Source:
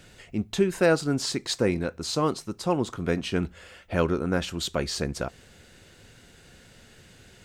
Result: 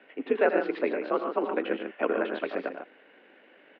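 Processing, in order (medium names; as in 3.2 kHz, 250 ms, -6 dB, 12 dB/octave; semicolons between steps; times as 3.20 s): loudspeakers at several distances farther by 57 m -12 dB, 74 m -8 dB, 97 m -8 dB; mistuned SSB +55 Hz 230–2700 Hz; granular stretch 0.51×, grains 40 ms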